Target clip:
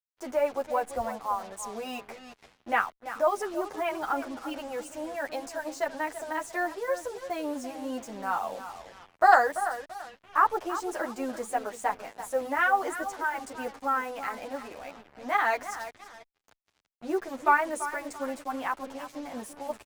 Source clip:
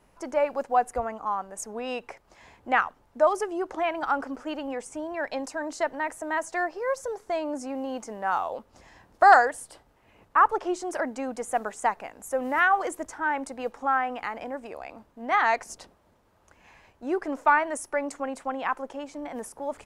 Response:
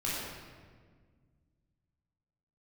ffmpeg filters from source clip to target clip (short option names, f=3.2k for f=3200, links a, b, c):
-filter_complex "[0:a]asplit=2[a][b];[b]adelay=337,lowpass=f=2.8k:p=1,volume=-11.5dB,asplit=2[c][d];[d]adelay=337,lowpass=f=2.8k:p=1,volume=0.3,asplit=2[e][f];[f]adelay=337,lowpass=f=2.8k:p=1,volume=0.3[g];[a][c][e][g]amix=inputs=4:normalize=0,acrusher=bits=6:mix=0:aa=0.5,asplit=2[h][i];[i]adelay=9.3,afreqshift=-3[j];[h][j]amix=inputs=2:normalize=1"